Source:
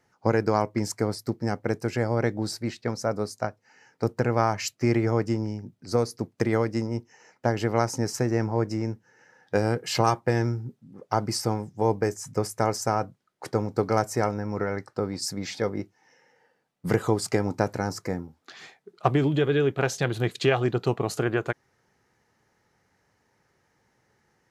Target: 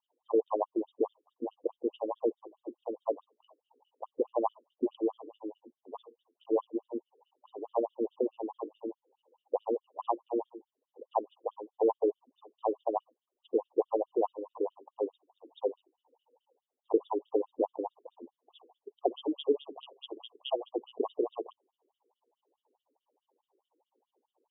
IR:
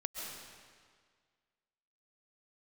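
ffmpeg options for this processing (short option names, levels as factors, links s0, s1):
-af "asuperstop=centerf=1800:order=20:qfactor=1,afftfilt=real='re*between(b*sr/1024,350*pow(2700/350,0.5+0.5*sin(2*PI*4.7*pts/sr))/1.41,350*pow(2700/350,0.5+0.5*sin(2*PI*4.7*pts/sr))*1.41)':imag='im*between(b*sr/1024,350*pow(2700/350,0.5+0.5*sin(2*PI*4.7*pts/sr))/1.41,350*pow(2700/350,0.5+0.5*sin(2*PI*4.7*pts/sr))*1.41)':win_size=1024:overlap=0.75"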